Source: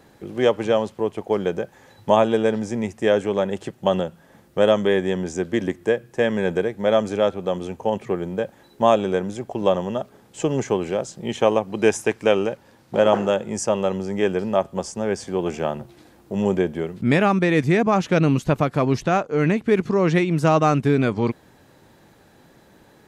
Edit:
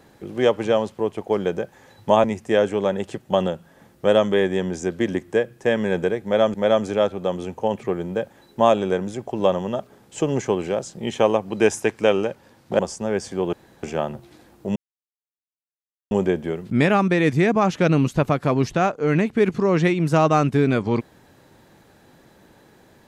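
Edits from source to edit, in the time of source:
2.24–2.77 s: delete
6.76–7.07 s: loop, 2 plays
13.01–14.75 s: delete
15.49 s: insert room tone 0.30 s
16.42 s: insert silence 1.35 s

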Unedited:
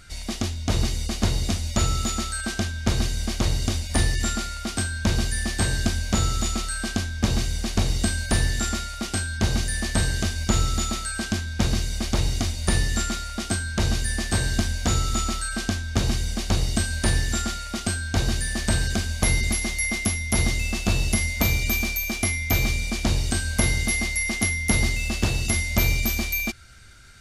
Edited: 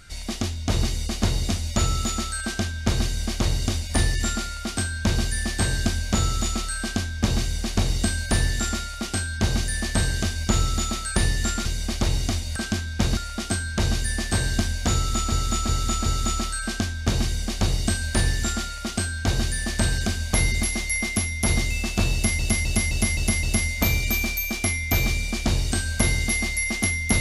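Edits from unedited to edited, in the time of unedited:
11.16–11.77 s: swap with 12.68–13.17 s
14.95–15.32 s: loop, 4 plays
21.02–21.28 s: loop, 6 plays

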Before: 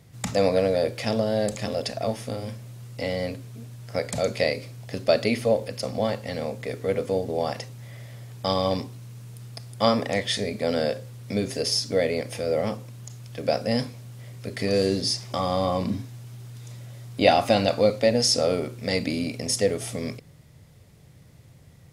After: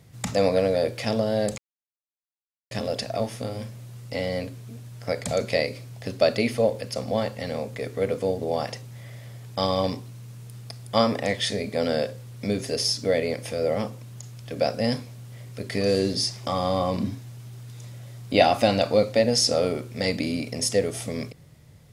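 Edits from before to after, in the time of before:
1.58 s: insert silence 1.13 s

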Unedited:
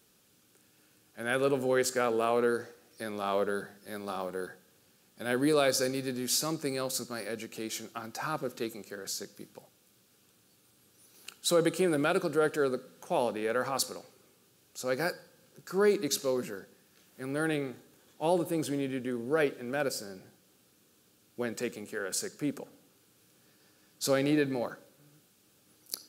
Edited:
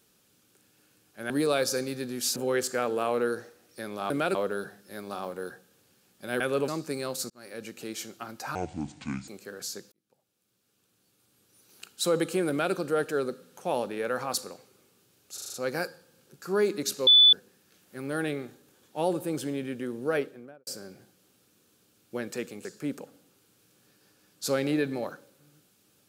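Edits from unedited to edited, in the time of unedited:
1.30–1.58 s: swap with 5.37–6.43 s
7.05–7.44 s: fade in
8.30–8.73 s: speed 59%
9.37–11.31 s: fade in linear
11.94–12.19 s: copy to 3.32 s
14.79 s: stutter 0.04 s, 6 plays
16.32–16.58 s: bleep 3.48 kHz -13 dBFS
19.35–19.92 s: studio fade out
21.90–22.24 s: delete

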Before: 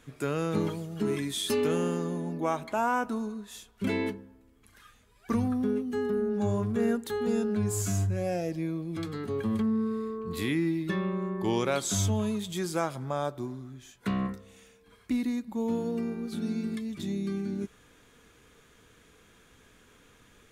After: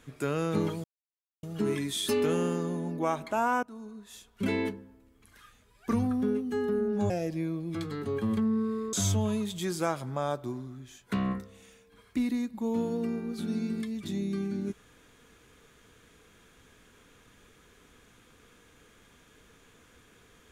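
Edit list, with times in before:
0.84 s: insert silence 0.59 s
3.04–3.87 s: fade in, from -19 dB
6.51–8.32 s: delete
10.15–11.87 s: delete

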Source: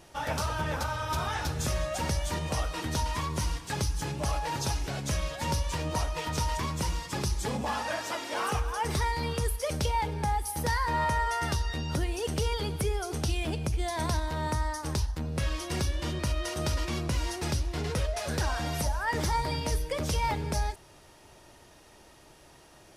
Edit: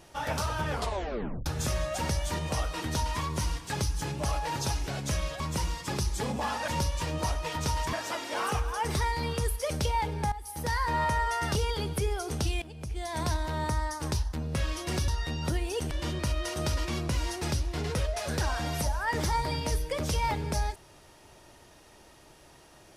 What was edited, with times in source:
0.68 s: tape stop 0.78 s
5.40–6.65 s: move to 7.93 s
10.32–10.81 s: fade in, from -14.5 dB
11.55–12.38 s: move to 15.91 s
13.45–14.14 s: fade in, from -19 dB

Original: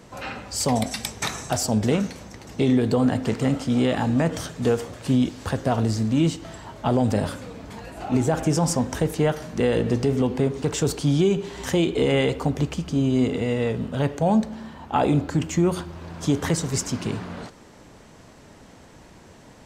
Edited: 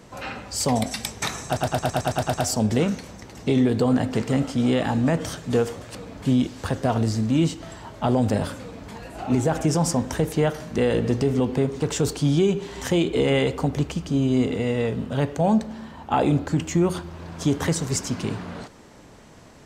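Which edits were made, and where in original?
1.46 s: stutter 0.11 s, 9 plays
7.43–7.73 s: copy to 5.07 s

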